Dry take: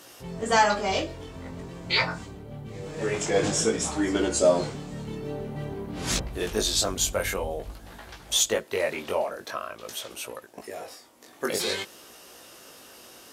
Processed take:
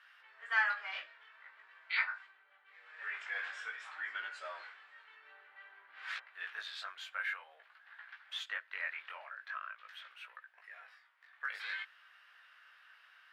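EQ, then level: ladder high-pass 1400 Hz, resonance 55%; air absorption 440 m; +3.0 dB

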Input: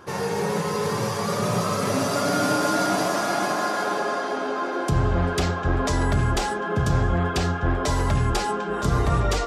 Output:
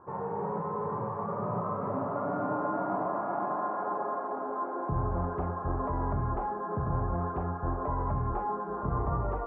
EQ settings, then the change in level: ladder low-pass 1200 Hz, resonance 50%; air absorption 390 m; 0.0 dB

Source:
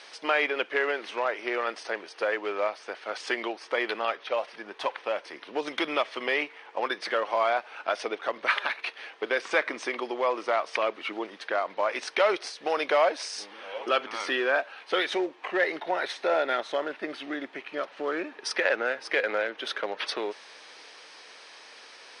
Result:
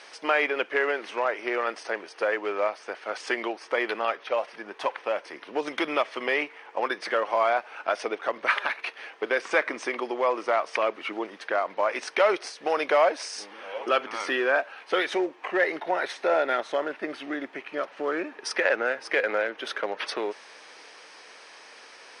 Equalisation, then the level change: bell 3800 Hz -5.5 dB 0.77 oct; +2.0 dB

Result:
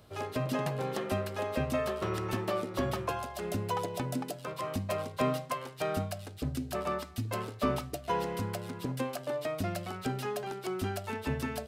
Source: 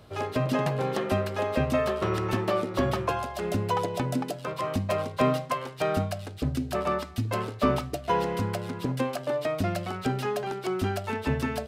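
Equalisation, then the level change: high shelf 7000 Hz +8 dB; -6.0 dB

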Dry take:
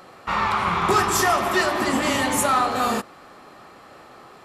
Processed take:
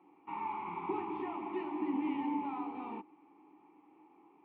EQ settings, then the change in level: vowel filter u; air absorption 270 m; speaker cabinet 110–2900 Hz, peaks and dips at 130 Hz -7 dB, 240 Hz -8 dB, 730 Hz -5 dB, 1300 Hz -7 dB, 2100 Hz -7 dB; 0.0 dB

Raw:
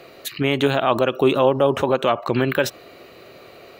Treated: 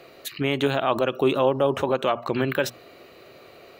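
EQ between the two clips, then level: notches 60/120/180/240 Hz; -4.0 dB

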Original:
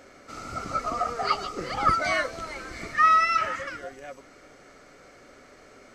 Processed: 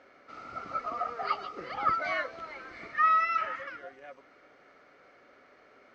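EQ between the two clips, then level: HPF 1300 Hz 6 dB/oct; air absorption 220 m; tilt -2 dB/oct; 0.0 dB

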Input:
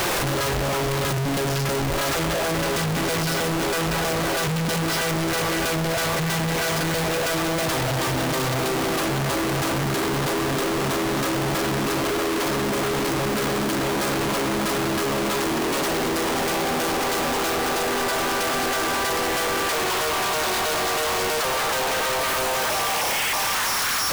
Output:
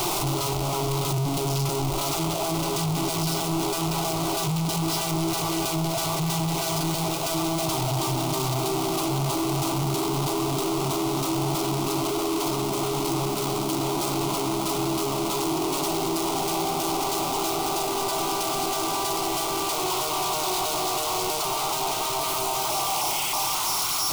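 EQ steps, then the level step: fixed phaser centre 340 Hz, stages 8; 0.0 dB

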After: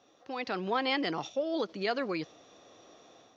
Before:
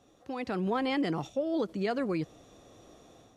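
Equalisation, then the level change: HPF 590 Hz 6 dB/oct; steep low-pass 6200 Hz 48 dB/oct; dynamic EQ 4500 Hz, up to +4 dB, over -54 dBFS, Q 0.79; +3.0 dB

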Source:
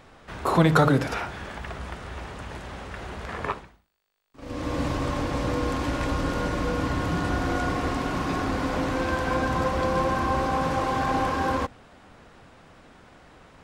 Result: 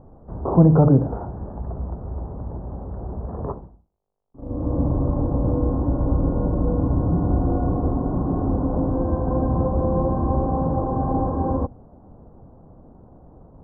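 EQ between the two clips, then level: inverse Chebyshev low-pass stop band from 2300 Hz, stop band 50 dB; low shelf 310 Hz +9.5 dB; 0.0 dB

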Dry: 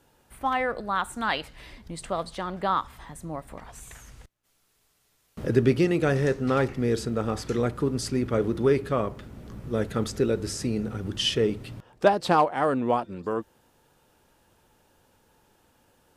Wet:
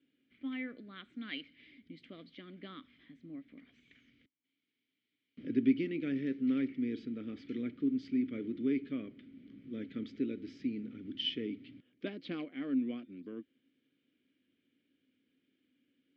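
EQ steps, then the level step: vowel filter i; HPF 68 Hz; LPF 4800 Hz 24 dB/oct; 0.0 dB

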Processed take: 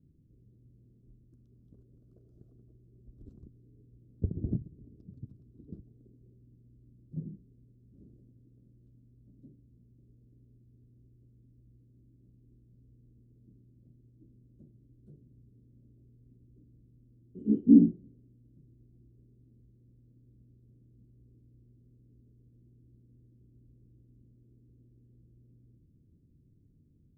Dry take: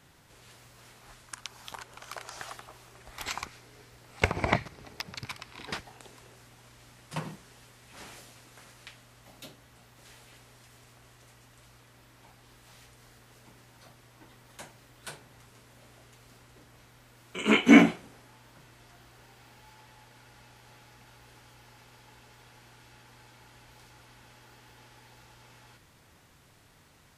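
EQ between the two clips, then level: inverse Chebyshev low-pass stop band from 810 Hz, stop band 50 dB; 0.0 dB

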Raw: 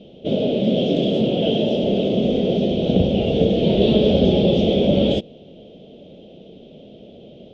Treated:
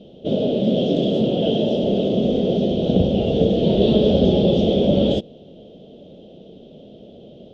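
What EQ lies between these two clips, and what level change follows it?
bell 2300 Hz -9 dB 0.52 oct; 0.0 dB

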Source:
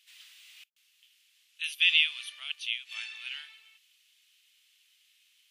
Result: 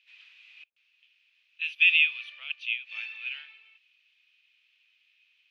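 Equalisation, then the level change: air absorption 260 m; bell 520 Hz +10 dB 0.24 oct; bell 2500 Hz +12.5 dB 0.21 oct; 0.0 dB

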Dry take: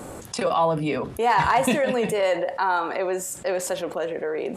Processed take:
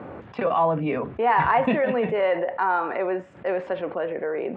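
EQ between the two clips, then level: HPF 80 Hz; LPF 2500 Hz 24 dB/oct; 0.0 dB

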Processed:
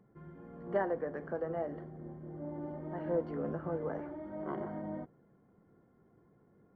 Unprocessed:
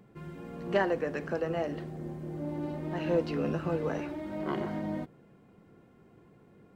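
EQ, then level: dynamic EQ 650 Hz, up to +4 dB, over -43 dBFS, Q 1; polynomial smoothing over 41 samples; -7.5 dB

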